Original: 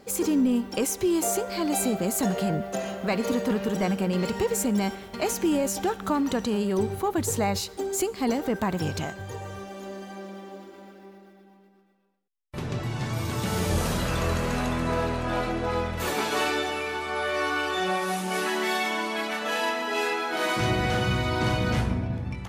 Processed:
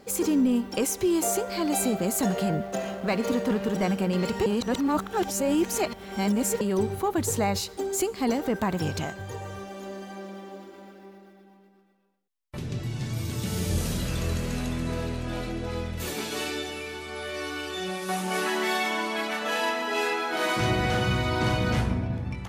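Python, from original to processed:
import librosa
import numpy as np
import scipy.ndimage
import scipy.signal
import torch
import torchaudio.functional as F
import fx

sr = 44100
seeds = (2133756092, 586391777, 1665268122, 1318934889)

y = fx.backlash(x, sr, play_db=-42.0, at=(2.62, 3.81))
y = fx.peak_eq(y, sr, hz=1000.0, db=-11.5, octaves=2.1, at=(12.57, 18.09))
y = fx.edit(y, sr, fx.reverse_span(start_s=4.46, length_s=2.15), tone=tone)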